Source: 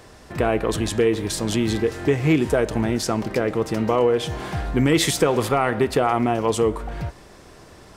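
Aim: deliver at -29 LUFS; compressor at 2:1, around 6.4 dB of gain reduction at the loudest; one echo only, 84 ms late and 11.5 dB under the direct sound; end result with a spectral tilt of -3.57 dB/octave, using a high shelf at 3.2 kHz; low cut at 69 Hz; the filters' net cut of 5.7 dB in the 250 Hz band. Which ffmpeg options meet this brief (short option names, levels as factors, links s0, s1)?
-af "highpass=69,equalizer=f=250:t=o:g=-8,highshelf=f=3200:g=7.5,acompressor=threshold=0.0501:ratio=2,aecho=1:1:84:0.266,volume=0.794"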